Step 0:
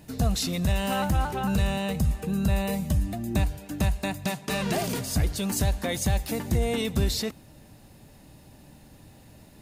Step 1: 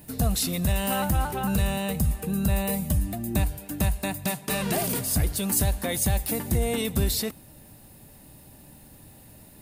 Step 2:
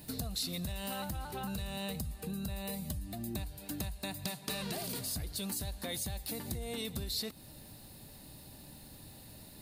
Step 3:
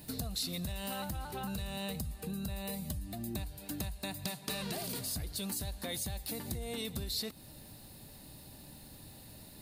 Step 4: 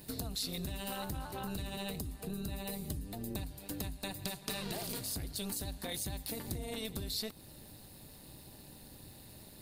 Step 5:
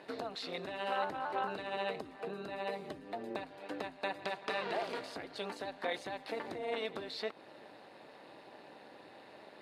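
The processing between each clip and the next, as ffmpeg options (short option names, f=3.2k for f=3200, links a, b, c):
-af "aexciter=amount=2.1:drive=8.4:freq=8.6k"
-af "acompressor=threshold=-33dB:ratio=10,equalizer=f=4.2k:t=o:w=0.57:g=10.5,volume=-3dB"
-af anull
-af "tremolo=f=210:d=0.71,volume=2dB"
-af "asuperpass=centerf=1000:order=4:qfactor=0.56,volume=9dB"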